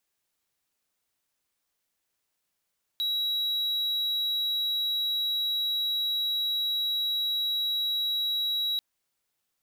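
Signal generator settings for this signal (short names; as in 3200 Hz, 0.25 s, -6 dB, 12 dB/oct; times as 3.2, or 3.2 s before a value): tone triangle 3880 Hz -23.5 dBFS 5.79 s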